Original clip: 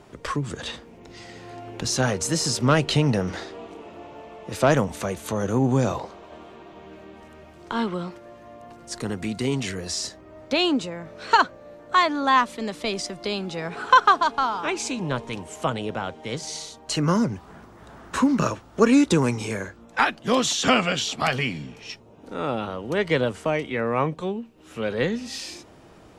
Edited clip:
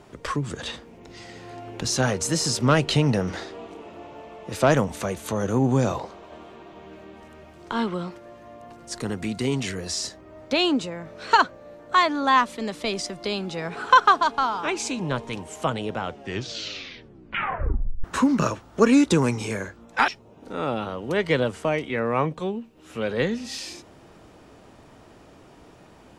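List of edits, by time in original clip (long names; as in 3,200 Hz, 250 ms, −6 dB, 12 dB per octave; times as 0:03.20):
0:15.99: tape stop 2.05 s
0:20.08–0:21.89: remove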